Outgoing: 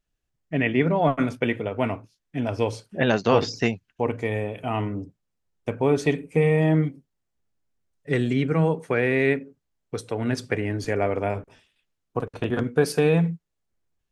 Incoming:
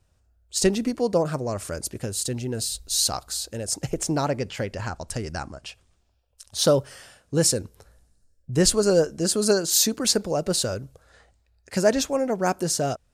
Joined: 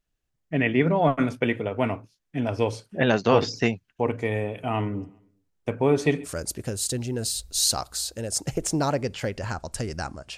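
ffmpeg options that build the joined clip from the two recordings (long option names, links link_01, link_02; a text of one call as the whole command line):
ffmpeg -i cue0.wav -i cue1.wav -filter_complex "[0:a]asplit=3[link_01][link_02][link_03];[link_01]afade=type=out:start_time=4.92:duration=0.02[link_04];[link_02]aecho=1:1:133|266|399:0.0708|0.0283|0.0113,afade=type=in:start_time=4.92:duration=0.02,afade=type=out:start_time=6.29:duration=0.02[link_05];[link_03]afade=type=in:start_time=6.29:duration=0.02[link_06];[link_04][link_05][link_06]amix=inputs=3:normalize=0,apad=whole_dur=10.37,atrim=end=10.37,atrim=end=6.29,asetpts=PTS-STARTPTS[link_07];[1:a]atrim=start=1.59:end=5.73,asetpts=PTS-STARTPTS[link_08];[link_07][link_08]acrossfade=duration=0.06:curve1=tri:curve2=tri" out.wav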